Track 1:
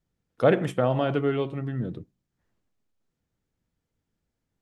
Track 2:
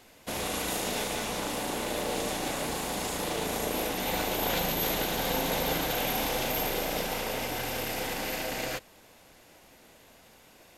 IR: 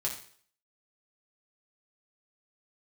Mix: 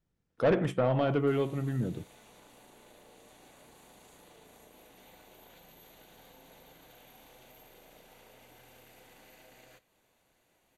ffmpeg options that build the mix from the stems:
-filter_complex "[0:a]highshelf=f=4.8k:g=-5.5,volume=-1dB[a];[1:a]bandreject=f=5.2k:w=5.8,acompressor=threshold=-39dB:ratio=5,adelay=1000,volume=-17.5dB,asplit=2[b][c];[c]volume=-13.5dB[d];[2:a]atrim=start_sample=2205[e];[d][e]afir=irnorm=-1:irlink=0[f];[a][b][f]amix=inputs=3:normalize=0,asoftclip=type=tanh:threshold=-18.5dB"

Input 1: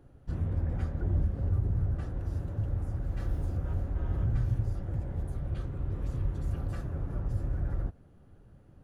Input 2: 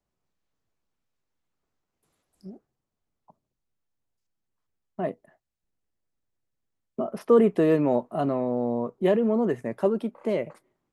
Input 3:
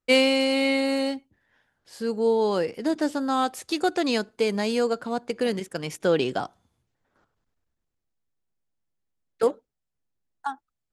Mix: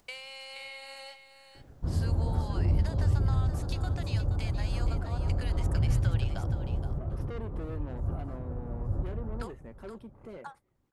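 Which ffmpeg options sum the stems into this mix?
-filter_complex "[0:a]highshelf=f=1.5k:t=q:w=1.5:g=-12,adelay=1550,volume=2.5dB,asplit=2[a][b];[b]volume=-23dB[c];[1:a]acompressor=mode=upward:threshold=-28dB:ratio=2.5,bandreject=f=610:w=12,asoftclip=type=tanh:threshold=-23dB,volume=-15dB,asplit=2[d][e];[2:a]highpass=f=740:w=0.5412,highpass=f=740:w=1.3066,acompressor=threshold=-39dB:ratio=6,volume=-3dB,asplit=2[f][g];[g]volume=-10dB[h];[e]apad=whole_len=458193[i];[a][i]sidechaincompress=threshold=-47dB:ratio=8:attack=8:release=197[j];[c][h]amix=inputs=2:normalize=0,aecho=0:1:474:1[k];[j][d][f][k]amix=inputs=4:normalize=0"

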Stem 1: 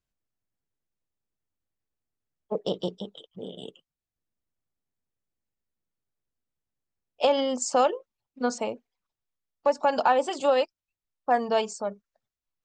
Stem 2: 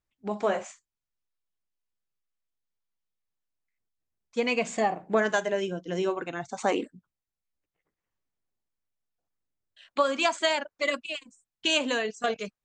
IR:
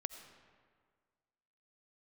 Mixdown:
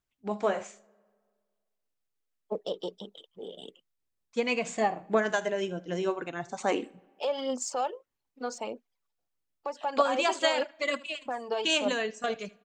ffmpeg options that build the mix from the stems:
-filter_complex "[0:a]highpass=250,alimiter=limit=-19.5dB:level=0:latency=1:release=284,aphaser=in_gain=1:out_gain=1:delay=2.7:decay=0.43:speed=1.6:type=triangular,volume=-3.5dB[a];[1:a]tremolo=f=6.4:d=0.32,volume=-1.5dB,asplit=3[b][c][d];[c]volume=-17dB[e];[d]volume=-19.5dB[f];[2:a]atrim=start_sample=2205[g];[e][g]afir=irnorm=-1:irlink=0[h];[f]aecho=0:1:78:1[i];[a][b][h][i]amix=inputs=4:normalize=0"

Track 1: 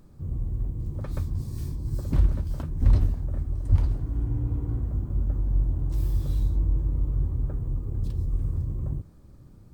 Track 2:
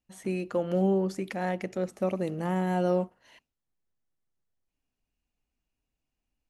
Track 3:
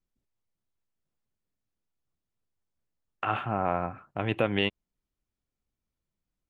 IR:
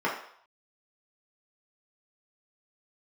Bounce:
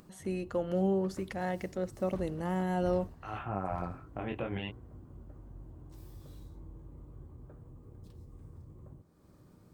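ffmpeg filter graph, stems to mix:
-filter_complex "[0:a]highpass=f=220:p=1,volume=-13.5dB,asplit=2[a][b];[b]volume=-19dB[c];[1:a]bandreject=f=2.4k:w=10,volume=-4dB,asplit=2[d][e];[2:a]alimiter=limit=-18dB:level=0:latency=1:release=72,lowpass=f=1.9k:p=1,flanger=delay=16:depth=7.1:speed=0.36,volume=-0.5dB[f];[e]apad=whole_len=286430[g];[f][g]sidechaincompress=threshold=-40dB:ratio=8:attack=16:release=439[h];[3:a]atrim=start_sample=2205[i];[c][i]afir=irnorm=-1:irlink=0[j];[a][d][h][j]amix=inputs=4:normalize=0,acompressor=mode=upward:threshold=-47dB:ratio=2.5"

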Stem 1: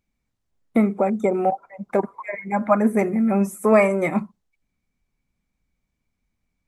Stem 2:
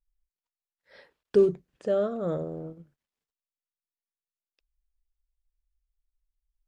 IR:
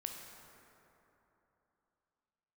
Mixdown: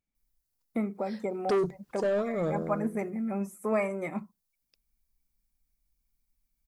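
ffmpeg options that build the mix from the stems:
-filter_complex "[0:a]volume=-12.5dB[a];[1:a]aexciter=amount=2:drive=7.4:freq=4.3k,asoftclip=type=tanh:threshold=-24dB,adelay=150,volume=1.5dB[b];[a][b]amix=inputs=2:normalize=0"

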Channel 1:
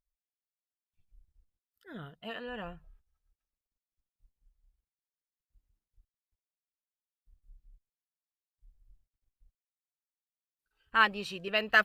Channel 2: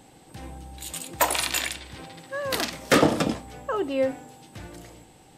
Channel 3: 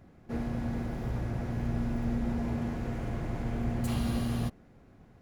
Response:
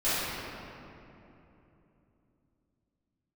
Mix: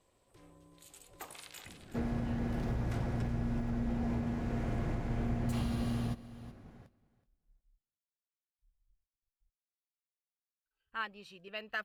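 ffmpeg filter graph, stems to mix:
-filter_complex "[0:a]volume=-13dB,asplit=2[a][b];[1:a]acompressor=threshold=-35dB:ratio=1.5,aeval=exprs='val(0)*sin(2*PI*230*n/s)':c=same,volume=-16.5dB,asplit=2[c][d];[d]volume=-13dB[e];[2:a]highshelf=f=11k:g=-7,adelay=1650,volume=1.5dB,asplit=2[f][g];[g]volume=-19dB[h];[b]apad=whole_len=237024[i];[c][i]sidechaincompress=threshold=-56dB:ratio=8:attack=16:release=390[j];[e][h]amix=inputs=2:normalize=0,aecho=0:1:374|748|1122:1|0.16|0.0256[k];[a][j][f][k]amix=inputs=4:normalize=0,alimiter=level_in=1dB:limit=-24dB:level=0:latency=1:release=466,volume=-1dB"

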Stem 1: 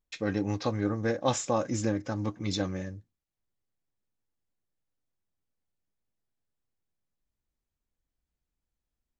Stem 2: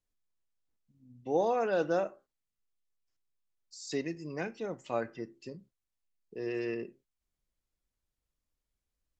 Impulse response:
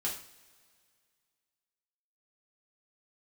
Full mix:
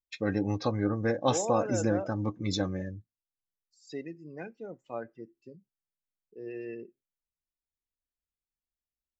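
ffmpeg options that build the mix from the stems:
-filter_complex "[0:a]volume=0.5dB[a];[1:a]volume=-4.5dB[b];[a][b]amix=inputs=2:normalize=0,afftdn=nr=16:nf=-43"

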